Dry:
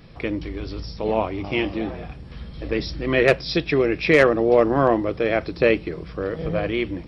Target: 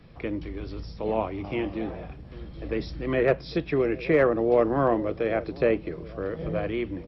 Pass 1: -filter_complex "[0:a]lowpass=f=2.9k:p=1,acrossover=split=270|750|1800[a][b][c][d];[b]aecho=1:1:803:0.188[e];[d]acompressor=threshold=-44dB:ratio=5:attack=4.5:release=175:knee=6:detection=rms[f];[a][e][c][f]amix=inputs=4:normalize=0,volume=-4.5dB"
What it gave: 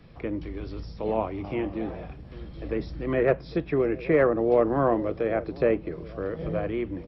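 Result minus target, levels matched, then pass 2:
compressor: peak gain reduction +9 dB
-filter_complex "[0:a]lowpass=f=2.9k:p=1,acrossover=split=270|750|1800[a][b][c][d];[b]aecho=1:1:803:0.188[e];[d]acompressor=threshold=-32.5dB:ratio=5:attack=4.5:release=175:knee=6:detection=rms[f];[a][e][c][f]amix=inputs=4:normalize=0,volume=-4.5dB"

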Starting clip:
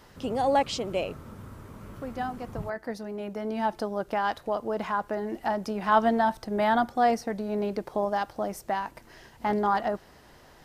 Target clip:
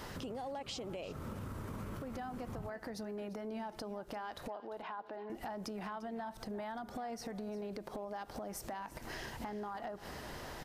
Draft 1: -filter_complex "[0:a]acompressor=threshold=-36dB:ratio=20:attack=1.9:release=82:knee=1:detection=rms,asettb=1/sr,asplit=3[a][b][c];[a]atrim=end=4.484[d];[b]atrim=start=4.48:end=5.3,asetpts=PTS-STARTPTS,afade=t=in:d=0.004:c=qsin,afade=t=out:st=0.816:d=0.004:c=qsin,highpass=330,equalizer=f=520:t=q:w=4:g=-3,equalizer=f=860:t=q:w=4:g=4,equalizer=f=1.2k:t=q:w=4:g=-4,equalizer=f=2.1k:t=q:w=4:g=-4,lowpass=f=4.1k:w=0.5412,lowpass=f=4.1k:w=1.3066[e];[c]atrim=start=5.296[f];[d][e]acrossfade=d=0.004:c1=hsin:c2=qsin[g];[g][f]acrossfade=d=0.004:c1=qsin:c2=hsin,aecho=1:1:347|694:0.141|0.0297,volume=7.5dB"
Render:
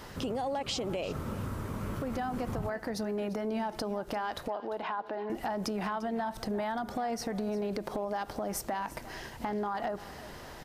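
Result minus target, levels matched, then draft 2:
compressor: peak gain reduction -9 dB
-filter_complex "[0:a]acompressor=threshold=-45.5dB:ratio=20:attack=1.9:release=82:knee=1:detection=rms,asettb=1/sr,asplit=3[a][b][c];[a]atrim=end=4.484[d];[b]atrim=start=4.48:end=5.3,asetpts=PTS-STARTPTS,afade=t=in:d=0.004:c=qsin,afade=t=out:st=0.816:d=0.004:c=qsin,highpass=330,equalizer=f=520:t=q:w=4:g=-3,equalizer=f=860:t=q:w=4:g=4,equalizer=f=1.2k:t=q:w=4:g=-4,equalizer=f=2.1k:t=q:w=4:g=-4,lowpass=f=4.1k:w=0.5412,lowpass=f=4.1k:w=1.3066[e];[c]atrim=start=5.296[f];[d][e]acrossfade=d=0.004:c1=hsin:c2=qsin[g];[g][f]acrossfade=d=0.004:c1=qsin:c2=hsin,aecho=1:1:347|694:0.141|0.0297,volume=7.5dB"

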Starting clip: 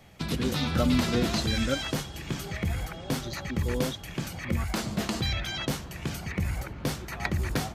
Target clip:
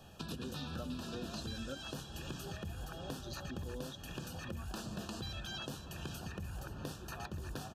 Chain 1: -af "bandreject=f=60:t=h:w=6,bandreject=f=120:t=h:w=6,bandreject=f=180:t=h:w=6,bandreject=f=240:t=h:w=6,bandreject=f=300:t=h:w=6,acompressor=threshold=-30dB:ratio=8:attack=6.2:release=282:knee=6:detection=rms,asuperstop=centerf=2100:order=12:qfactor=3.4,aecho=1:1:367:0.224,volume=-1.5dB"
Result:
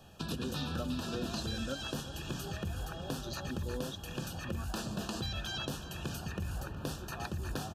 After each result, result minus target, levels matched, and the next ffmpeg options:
echo 0.164 s early; compressor: peak gain reduction -5.5 dB
-af "bandreject=f=60:t=h:w=6,bandreject=f=120:t=h:w=6,bandreject=f=180:t=h:w=6,bandreject=f=240:t=h:w=6,bandreject=f=300:t=h:w=6,acompressor=threshold=-30dB:ratio=8:attack=6.2:release=282:knee=6:detection=rms,asuperstop=centerf=2100:order=12:qfactor=3.4,aecho=1:1:531:0.224,volume=-1.5dB"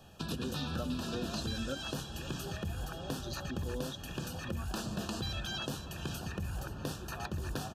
compressor: peak gain reduction -5.5 dB
-af "bandreject=f=60:t=h:w=6,bandreject=f=120:t=h:w=6,bandreject=f=180:t=h:w=6,bandreject=f=240:t=h:w=6,bandreject=f=300:t=h:w=6,acompressor=threshold=-36.5dB:ratio=8:attack=6.2:release=282:knee=6:detection=rms,asuperstop=centerf=2100:order=12:qfactor=3.4,aecho=1:1:531:0.224,volume=-1.5dB"

